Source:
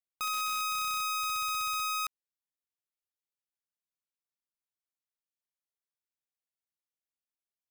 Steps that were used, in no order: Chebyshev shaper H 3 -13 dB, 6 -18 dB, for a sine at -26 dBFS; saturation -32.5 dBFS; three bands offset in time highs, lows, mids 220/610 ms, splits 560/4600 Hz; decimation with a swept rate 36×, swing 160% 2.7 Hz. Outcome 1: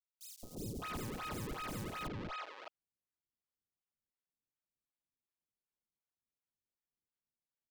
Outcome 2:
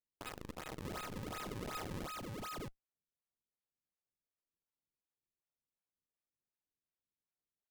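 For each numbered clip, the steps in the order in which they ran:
saturation > Chebyshev shaper > decimation with a swept rate > three bands offset in time; three bands offset in time > saturation > Chebyshev shaper > decimation with a swept rate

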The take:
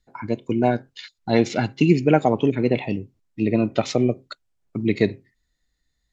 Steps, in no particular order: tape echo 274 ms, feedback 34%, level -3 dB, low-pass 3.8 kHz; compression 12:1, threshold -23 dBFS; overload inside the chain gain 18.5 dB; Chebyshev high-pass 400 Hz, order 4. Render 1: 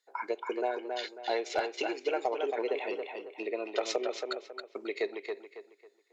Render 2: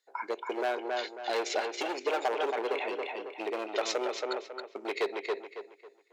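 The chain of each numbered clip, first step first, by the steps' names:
compression > tape echo > Chebyshev high-pass > overload inside the chain; overload inside the chain > tape echo > compression > Chebyshev high-pass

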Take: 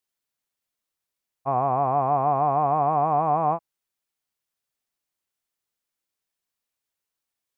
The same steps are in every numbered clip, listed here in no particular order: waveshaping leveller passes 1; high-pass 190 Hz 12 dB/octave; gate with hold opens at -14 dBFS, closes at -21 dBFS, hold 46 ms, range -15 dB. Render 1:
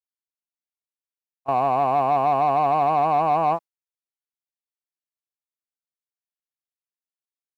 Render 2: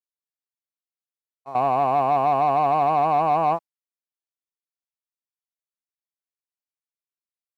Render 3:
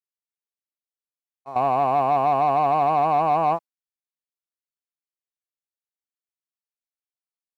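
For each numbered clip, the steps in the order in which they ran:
high-pass > waveshaping leveller > gate with hold; gate with hold > high-pass > waveshaping leveller; high-pass > gate with hold > waveshaping leveller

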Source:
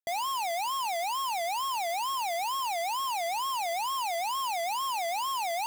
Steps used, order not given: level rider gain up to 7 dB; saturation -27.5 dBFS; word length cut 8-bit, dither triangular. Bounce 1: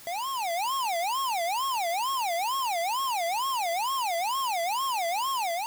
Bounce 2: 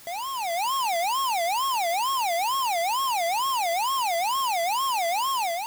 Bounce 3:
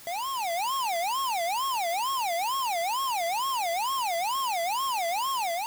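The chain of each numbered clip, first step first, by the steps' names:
level rider > word length cut > saturation; saturation > level rider > word length cut; level rider > saturation > word length cut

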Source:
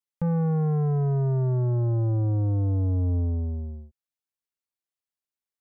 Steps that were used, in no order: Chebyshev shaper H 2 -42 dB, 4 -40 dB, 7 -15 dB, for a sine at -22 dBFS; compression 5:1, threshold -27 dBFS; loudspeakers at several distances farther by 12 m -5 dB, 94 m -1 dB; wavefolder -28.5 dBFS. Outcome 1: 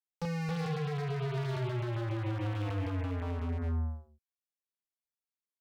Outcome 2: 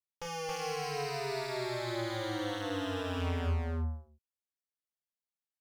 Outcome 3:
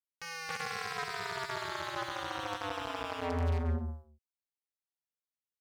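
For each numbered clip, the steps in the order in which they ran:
Chebyshev shaper > loudspeakers at several distances > compression > wavefolder; Chebyshev shaper > wavefolder > loudspeakers at several distances > compression; wavefolder > loudspeakers at several distances > Chebyshev shaper > compression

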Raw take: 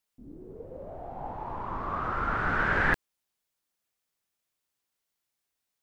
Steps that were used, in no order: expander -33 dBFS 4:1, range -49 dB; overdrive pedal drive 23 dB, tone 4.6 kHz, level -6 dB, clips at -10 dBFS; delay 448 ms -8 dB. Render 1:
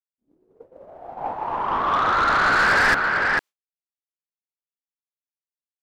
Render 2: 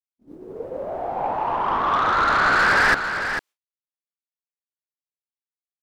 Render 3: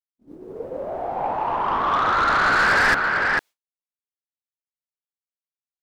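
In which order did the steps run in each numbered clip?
expander > delay > overdrive pedal; overdrive pedal > expander > delay; delay > overdrive pedal > expander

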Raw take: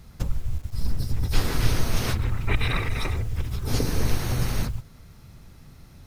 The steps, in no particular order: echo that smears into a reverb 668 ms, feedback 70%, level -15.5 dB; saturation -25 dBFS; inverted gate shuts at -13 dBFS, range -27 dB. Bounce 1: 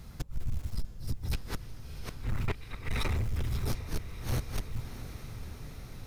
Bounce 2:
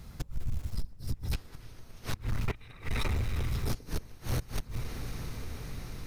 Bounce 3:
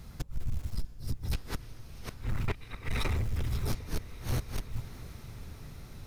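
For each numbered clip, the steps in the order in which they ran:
inverted gate > echo that smears into a reverb > saturation; echo that smears into a reverb > inverted gate > saturation; inverted gate > saturation > echo that smears into a reverb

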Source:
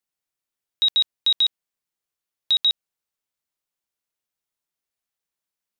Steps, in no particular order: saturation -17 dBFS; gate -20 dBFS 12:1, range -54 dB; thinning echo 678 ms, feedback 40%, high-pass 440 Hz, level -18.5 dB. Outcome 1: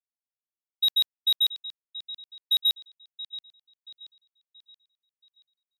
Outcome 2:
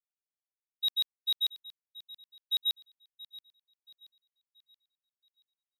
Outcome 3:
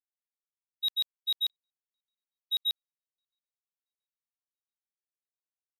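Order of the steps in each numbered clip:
gate > thinning echo > saturation; saturation > gate > thinning echo; thinning echo > saturation > gate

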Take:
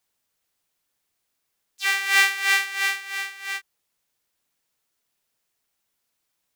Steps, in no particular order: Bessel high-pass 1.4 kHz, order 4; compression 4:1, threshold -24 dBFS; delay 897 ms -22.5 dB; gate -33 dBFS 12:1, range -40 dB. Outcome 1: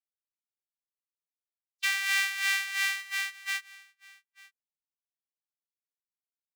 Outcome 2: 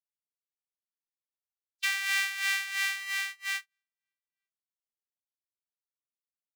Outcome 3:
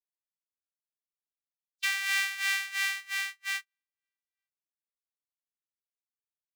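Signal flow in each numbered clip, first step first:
Bessel high-pass > gate > compression > delay; delay > gate > compression > Bessel high-pass; compression > delay > gate > Bessel high-pass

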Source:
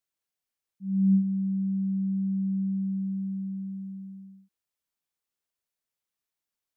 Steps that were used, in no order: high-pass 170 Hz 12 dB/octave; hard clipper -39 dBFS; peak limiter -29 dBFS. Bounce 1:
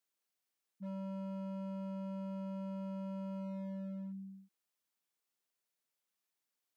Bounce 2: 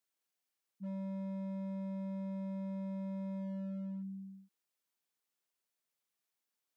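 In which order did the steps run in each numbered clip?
peak limiter > hard clipper > high-pass; peak limiter > high-pass > hard clipper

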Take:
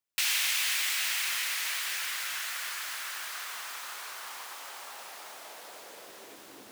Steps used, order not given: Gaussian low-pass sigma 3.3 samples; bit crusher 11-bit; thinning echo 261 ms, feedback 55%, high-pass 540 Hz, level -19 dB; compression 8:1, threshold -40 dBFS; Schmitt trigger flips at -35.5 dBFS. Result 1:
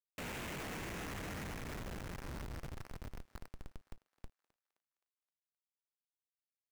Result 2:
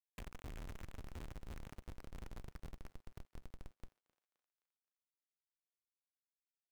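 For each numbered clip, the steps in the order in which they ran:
Gaussian low-pass > Schmitt trigger > compression > bit crusher > thinning echo; Gaussian low-pass > compression > Schmitt trigger > bit crusher > thinning echo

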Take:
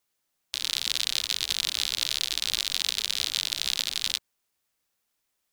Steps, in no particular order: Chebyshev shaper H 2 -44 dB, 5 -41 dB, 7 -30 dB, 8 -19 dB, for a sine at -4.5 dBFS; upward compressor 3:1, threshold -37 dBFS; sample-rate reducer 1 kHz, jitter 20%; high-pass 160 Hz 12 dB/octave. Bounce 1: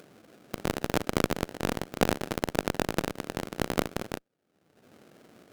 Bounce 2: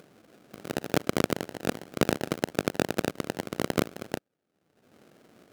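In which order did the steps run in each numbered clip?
sample-rate reducer > high-pass > Chebyshev shaper > upward compressor; upward compressor > sample-rate reducer > Chebyshev shaper > high-pass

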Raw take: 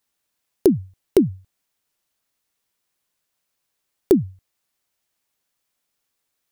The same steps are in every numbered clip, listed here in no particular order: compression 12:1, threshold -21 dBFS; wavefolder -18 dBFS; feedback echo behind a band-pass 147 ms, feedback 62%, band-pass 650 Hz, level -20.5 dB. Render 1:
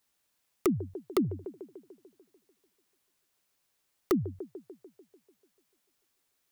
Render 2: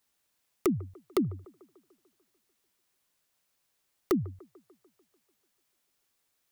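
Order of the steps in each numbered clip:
feedback echo behind a band-pass > compression > wavefolder; compression > wavefolder > feedback echo behind a band-pass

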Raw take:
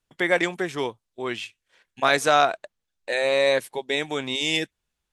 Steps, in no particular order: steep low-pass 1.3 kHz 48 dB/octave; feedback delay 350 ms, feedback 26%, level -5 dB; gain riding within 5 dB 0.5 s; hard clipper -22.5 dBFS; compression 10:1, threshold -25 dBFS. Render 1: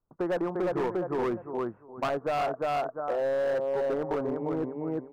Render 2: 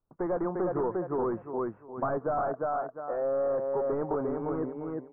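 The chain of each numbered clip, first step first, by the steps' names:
feedback delay > gain riding > steep low-pass > hard clipper > compression; gain riding > feedback delay > hard clipper > steep low-pass > compression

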